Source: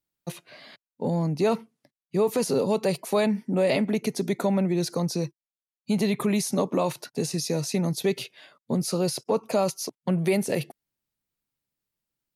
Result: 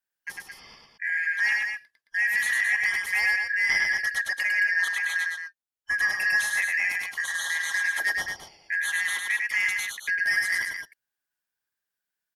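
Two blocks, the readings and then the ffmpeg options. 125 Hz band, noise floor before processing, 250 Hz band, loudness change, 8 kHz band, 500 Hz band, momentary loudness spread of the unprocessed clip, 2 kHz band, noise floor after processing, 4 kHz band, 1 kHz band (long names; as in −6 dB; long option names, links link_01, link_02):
below −30 dB, below −85 dBFS, below −30 dB, +2.0 dB, −0.5 dB, −28.5 dB, 8 LU, +19.0 dB, below −85 dBFS, +1.0 dB, −8.5 dB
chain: -filter_complex "[0:a]afftfilt=real='real(if(lt(b,272),68*(eq(floor(b/68),0)*2+eq(floor(b/68),1)*0+eq(floor(b/68),2)*3+eq(floor(b/68),3)*1)+mod(b,68),b),0)':imag='imag(if(lt(b,272),68*(eq(floor(b/68),0)*2+eq(floor(b/68),1)*0+eq(floor(b/68),2)*3+eq(floor(b/68),3)*1)+mod(b,68),b),0)':win_size=2048:overlap=0.75,asoftclip=type=hard:threshold=-15.5dB,asplit=2[link_01][link_02];[link_02]aecho=0:1:102|218.7:0.708|0.447[link_03];[link_01][link_03]amix=inputs=2:normalize=0,adynamicequalizer=threshold=0.00251:dfrequency=820:dqfactor=7.3:tfrequency=820:tqfactor=7.3:attack=5:release=100:ratio=0.375:range=2.5:mode=boostabove:tftype=bell,volume=-3dB"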